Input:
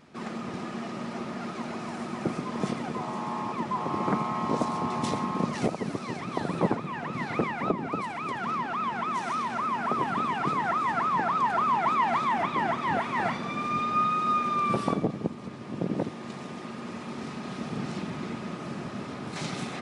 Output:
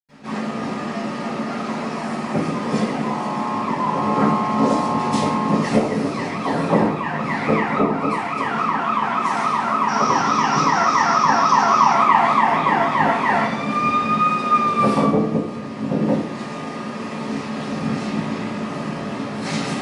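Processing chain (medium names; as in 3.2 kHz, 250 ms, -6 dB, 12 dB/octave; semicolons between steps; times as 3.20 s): 9.79–11.84 s: resonant low-pass 5.7 kHz, resonance Q 14; reverberation RT60 0.55 s, pre-delay 87 ms, DRR -60 dB; trim +5.5 dB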